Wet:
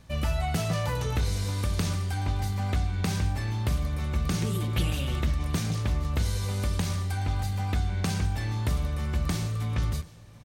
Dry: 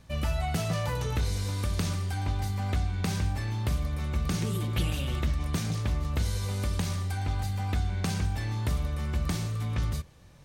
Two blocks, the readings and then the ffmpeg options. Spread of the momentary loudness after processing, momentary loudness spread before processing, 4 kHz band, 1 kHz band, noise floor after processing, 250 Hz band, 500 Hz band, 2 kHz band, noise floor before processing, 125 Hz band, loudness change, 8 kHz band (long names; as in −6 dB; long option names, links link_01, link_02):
2 LU, 2 LU, +1.5 dB, +1.5 dB, −42 dBFS, +1.5 dB, +1.5 dB, +1.5 dB, −43 dBFS, +1.5 dB, +1.5 dB, +1.5 dB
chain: -af "aecho=1:1:731:0.0794,volume=1.5dB"